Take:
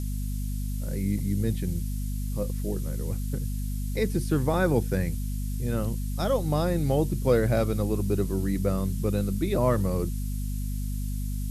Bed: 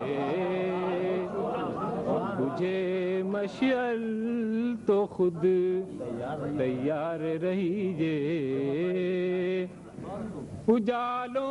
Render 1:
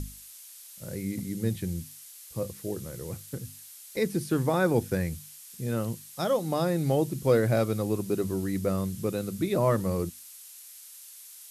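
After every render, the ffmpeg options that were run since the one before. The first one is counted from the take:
-af "bandreject=f=50:t=h:w=6,bandreject=f=100:t=h:w=6,bandreject=f=150:t=h:w=6,bandreject=f=200:t=h:w=6,bandreject=f=250:t=h:w=6"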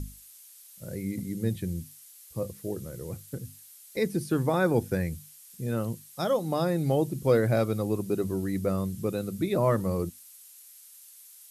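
-af "afftdn=nr=6:nf=-48"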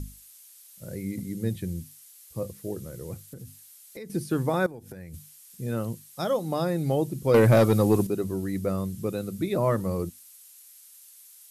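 -filter_complex "[0:a]asettb=1/sr,asplit=3[a][b][c];[a]atrim=end=3.144[d];[b]atrim=start=3.14:end=4.1,asetpts=PTS-STARTPTS,afade=t=in:d=0.004:c=qsin,afade=t=out:st=0.956:d=0.004:c=qsin,acompressor=threshold=-37dB:ratio=6:attack=3.2:release=140:knee=1:detection=peak[e];[c]atrim=start=4.096[f];[d][e]acrossfade=d=0.004:c1=hsin:c2=qsin[g];[g][f]acrossfade=d=0.004:c1=qsin:c2=hsin,asettb=1/sr,asplit=3[h][i][j];[h]atrim=end=4.664[k];[i]atrim=start=4.66:end=5.14,asetpts=PTS-STARTPTS,afade=t=in:d=0.004:c=qsin,afade=t=out:st=0.476:d=0.004:c=qsin,acompressor=threshold=-37dB:ratio=20:attack=3.2:release=140:knee=1:detection=peak[l];[j]atrim=start=5.136[m];[k][l]acrossfade=d=0.004:c1=hsin:c2=qsin[n];[n][m]acrossfade=d=0.004:c1=qsin:c2=hsin,asettb=1/sr,asplit=3[o][p][q];[o]atrim=end=7.344[r];[p]atrim=start=7.34:end=8.07,asetpts=PTS-STARTPTS,afade=t=in:d=0.004:c=qsin,afade=t=out:st=0.726:d=0.004:c=qsin,aeval=exprs='0.251*sin(PI/2*1.78*val(0)/0.251)':c=same[s];[q]atrim=start=8.066[t];[r][s]acrossfade=d=0.004:c1=hsin:c2=qsin[u];[u][t]acrossfade=d=0.004:c1=qsin:c2=hsin"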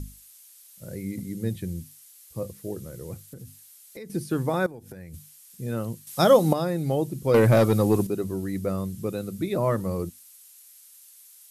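-filter_complex "[0:a]asplit=3[a][b][c];[a]atrim=end=6.072[d];[b]atrim=start=6.068:end=6.532,asetpts=PTS-STARTPTS,volume=10dB[e];[c]atrim=start=6.528[f];[d][e]acrossfade=d=0.004:c1=hsin:c2=hsin[g];[g][f]acrossfade=d=0.004:c1=hsin:c2=hsin"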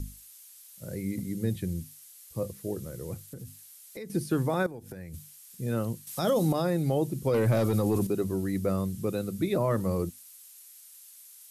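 -filter_complex "[0:a]acrossover=split=460|3000[a][b][c];[b]acompressor=threshold=-22dB:ratio=6[d];[a][d][c]amix=inputs=3:normalize=0,alimiter=limit=-17.5dB:level=0:latency=1:release=21"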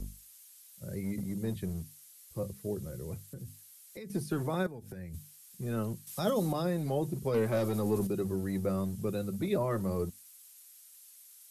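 -filter_complex "[0:a]acrossover=split=190[a][b];[a]asoftclip=type=hard:threshold=-36.5dB[c];[b]flanger=delay=4.5:depth=1.2:regen=50:speed=1.9:shape=triangular[d];[c][d]amix=inputs=2:normalize=0"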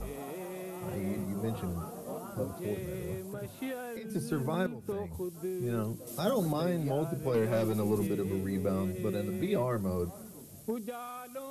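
-filter_complex "[1:a]volume=-12dB[a];[0:a][a]amix=inputs=2:normalize=0"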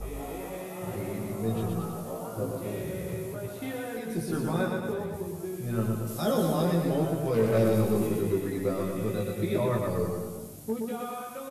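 -filter_complex "[0:a]asplit=2[a][b];[b]adelay=18,volume=-2.5dB[c];[a][c]amix=inputs=2:normalize=0,asplit=2[d][e];[e]aecho=0:1:120|228|325.2|412.7|491.4:0.631|0.398|0.251|0.158|0.1[f];[d][f]amix=inputs=2:normalize=0"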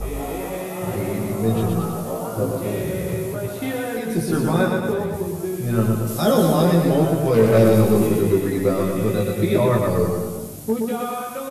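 -af "volume=9.5dB"

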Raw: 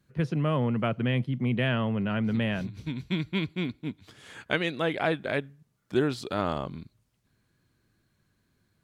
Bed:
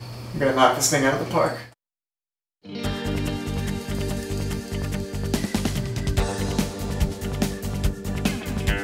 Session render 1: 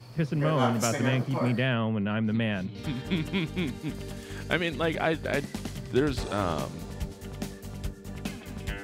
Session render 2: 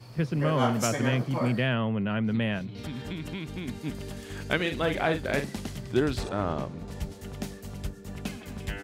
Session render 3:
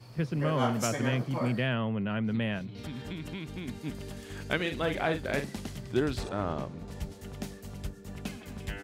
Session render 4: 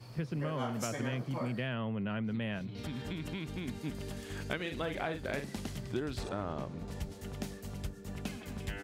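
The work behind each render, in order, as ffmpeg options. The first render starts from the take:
-filter_complex "[1:a]volume=-11.5dB[a];[0:a][a]amix=inputs=2:normalize=0"
-filter_complex "[0:a]asettb=1/sr,asplit=3[a][b][c];[a]atrim=end=2.584[d];[b]atrim=start=2.58:end=3.68,asetpts=PTS-STARTPTS,afade=t=in:d=0.004:c=qsin,afade=t=out:st=1.096:d=0.004:c=qsin,acompressor=threshold=-31dB:ratio=6:attack=3.2:release=140:knee=1:detection=peak[e];[c]atrim=start=3.676[f];[d][e]acrossfade=d=0.004:c1=hsin:c2=qsin[g];[g][f]acrossfade=d=0.004:c1=qsin:c2=hsin,asplit=3[h][i][j];[h]afade=t=out:st=4.59:d=0.02[k];[i]asplit=2[l][m];[m]adelay=44,volume=-8dB[n];[l][n]amix=inputs=2:normalize=0,afade=t=in:st=4.59:d=0.02,afade=t=out:st=5.58:d=0.02[o];[j]afade=t=in:st=5.58:d=0.02[p];[k][o][p]amix=inputs=3:normalize=0,asettb=1/sr,asplit=3[q][r][s];[q]atrim=end=6.294[t];[r]atrim=start=6.29:end=6.88,asetpts=PTS-STARTPTS,afade=t=in:d=0.004:c=qsin,afade=t=out:st=0.586:d=0.004:c=qsin,lowpass=f=1.5k:p=1[u];[s]atrim=start=6.876[v];[t][u]acrossfade=d=0.004:c1=hsin:c2=qsin[w];[w][v]acrossfade=d=0.004:c1=qsin:c2=hsin"
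-af "volume=-3dB"
-af "acompressor=threshold=-33dB:ratio=4"

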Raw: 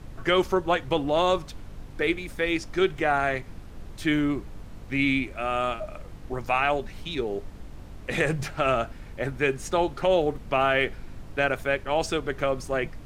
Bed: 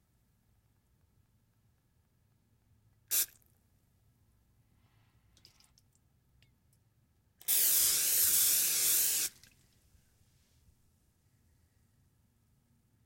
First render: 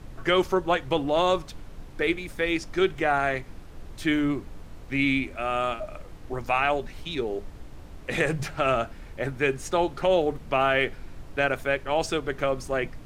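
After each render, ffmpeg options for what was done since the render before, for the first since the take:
-af "bandreject=f=50:t=h:w=4,bandreject=f=100:t=h:w=4,bandreject=f=150:t=h:w=4,bandreject=f=200:t=h:w=4,bandreject=f=250:t=h:w=4"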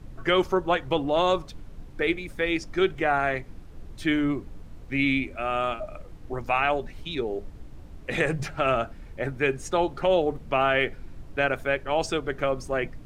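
-af "afftdn=nr=6:nf=-44"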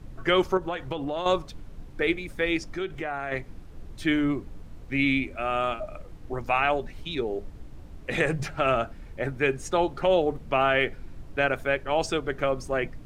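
-filter_complex "[0:a]asettb=1/sr,asplit=3[a][b][c];[a]atrim=end=0.574[d];[b]atrim=start=0.57:end=1.26,asetpts=PTS-STARTPTS,afade=t=in:d=0.004:c=qsin,afade=t=out:st=0.686:d=0.004:c=qsin,acompressor=threshold=-26dB:ratio=6:attack=3.2:release=140:knee=1:detection=peak[e];[c]atrim=start=1.256[f];[d][e]acrossfade=d=0.004:c1=hsin:c2=qsin[g];[g][f]acrossfade=d=0.004:c1=qsin:c2=hsin,asettb=1/sr,asplit=3[h][i][j];[h]atrim=end=2.654[k];[i]atrim=start=2.65:end=3.32,asetpts=PTS-STARTPTS,afade=t=in:d=0.004:c=qsin,afade=t=out:st=0.666:d=0.004:c=qsin,acompressor=threshold=-31dB:ratio=2.5:attack=3.2:release=140:knee=1:detection=peak[l];[j]atrim=start=3.316[m];[k][l]acrossfade=d=0.004:c1=hsin:c2=qsin[n];[n][m]acrossfade=d=0.004:c1=qsin:c2=hsin"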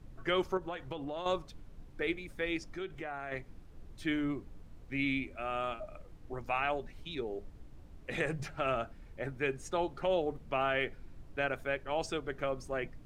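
-af "volume=-9dB"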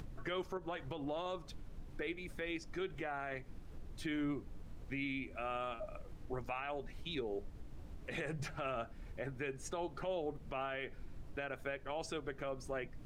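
-af "alimiter=level_in=6dB:limit=-24dB:level=0:latency=1:release=185,volume=-6dB,acompressor=mode=upward:threshold=-42dB:ratio=2.5"

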